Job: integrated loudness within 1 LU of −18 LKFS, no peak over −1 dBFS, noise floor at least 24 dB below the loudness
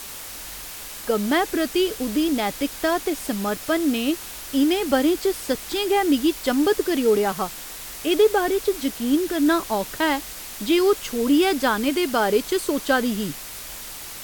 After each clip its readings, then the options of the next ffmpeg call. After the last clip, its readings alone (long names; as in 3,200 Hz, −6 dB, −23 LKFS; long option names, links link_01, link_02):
background noise floor −36 dBFS; target noise floor −46 dBFS; integrated loudness −22.0 LKFS; sample peak −7.5 dBFS; target loudness −18.0 LKFS
→ -af "afftdn=noise_reduction=10:noise_floor=-36"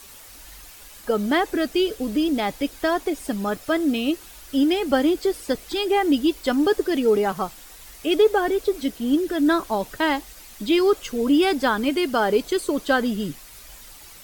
background noise floor −45 dBFS; target noise floor −47 dBFS
→ -af "afftdn=noise_reduction=6:noise_floor=-45"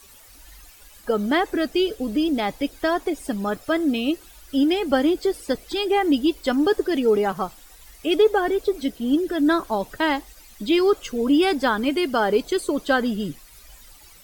background noise floor −49 dBFS; integrated loudness −22.5 LKFS; sample peak −7.5 dBFS; target loudness −18.0 LKFS
→ -af "volume=4.5dB"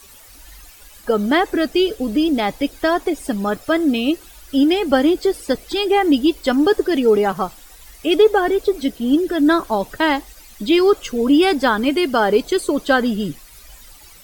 integrated loudness −18.0 LKFS; sample peak −3.0 dBFS; background noise floor −44 dBFS